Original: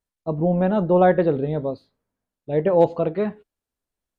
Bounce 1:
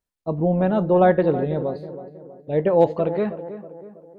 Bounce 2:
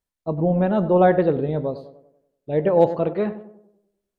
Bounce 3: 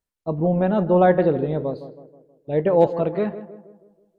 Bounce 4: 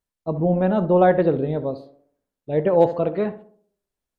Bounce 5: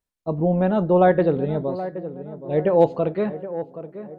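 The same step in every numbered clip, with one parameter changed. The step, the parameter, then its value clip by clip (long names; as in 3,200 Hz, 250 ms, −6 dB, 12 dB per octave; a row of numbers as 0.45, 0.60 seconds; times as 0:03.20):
tape delay, delay time: 322, 97, 161, 66, 774 milliseconds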